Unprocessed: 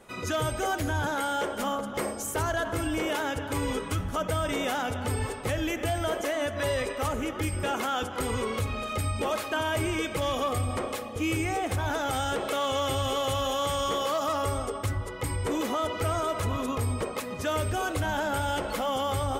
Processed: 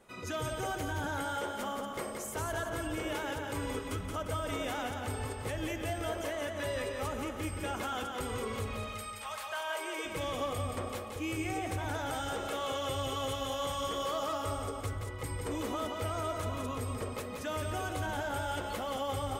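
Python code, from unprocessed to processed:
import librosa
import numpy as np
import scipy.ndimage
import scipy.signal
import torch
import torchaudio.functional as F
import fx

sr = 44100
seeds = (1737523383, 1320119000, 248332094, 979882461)

y = fx.highpass(x, sr, hz=fx.line((8.92, 1300.0), (10.04, 330.0)), slope=24, at=(8.92, 10.04), fade=0.02)
y = fx.echo_feedback(y, sr, ms=175, feedback_pct=46, wet_db=-5.0)
y = y * 10.0 ** (-8.0 / 20.0)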